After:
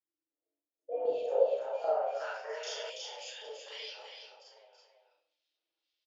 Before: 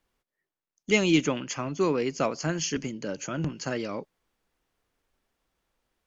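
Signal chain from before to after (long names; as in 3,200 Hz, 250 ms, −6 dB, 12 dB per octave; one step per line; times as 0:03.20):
frequency shifter +290 Hz
single-tap delay 802 ms −15.5 dB
auto-filter band-pass square 1.9 Hz 530–4,800 Hz
downward compressor 3 to 1, threshold −31 dBFS, peak gain reduction 7 dB
single-tap delay 330 ms −6.5 dB
convolution reverb RT60 0.60 s, pre-delay 29 ms, DRR −7 dB
band-pass filter sweep 290 Hz → 3,100 Hz, 0:01.01–0:02.91
healed spectral selection 0:02.66–0:02.87, 250–3,100 Hz before
level +2 dB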